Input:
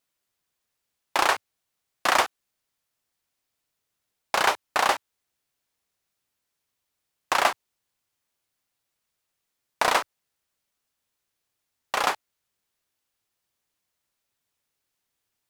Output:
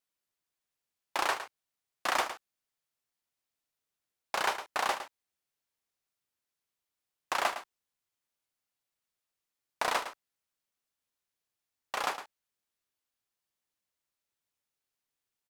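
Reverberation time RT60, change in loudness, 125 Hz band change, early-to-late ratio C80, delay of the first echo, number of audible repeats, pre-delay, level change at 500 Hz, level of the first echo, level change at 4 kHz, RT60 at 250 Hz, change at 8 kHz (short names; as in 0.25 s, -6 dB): none, -8.5 dB, n/a, none, 0.11 s, 1, none, -8.5 dB, -11.0 dB, -8.0 dB, none, -8.0 dB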